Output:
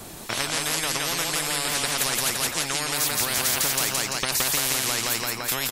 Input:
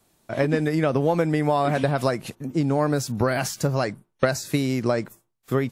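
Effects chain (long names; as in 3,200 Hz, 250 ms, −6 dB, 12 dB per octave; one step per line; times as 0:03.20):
repeating echo 170 ms, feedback 39%, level −4.5 dB
every bin compressed towards the loudest bin 10 to 1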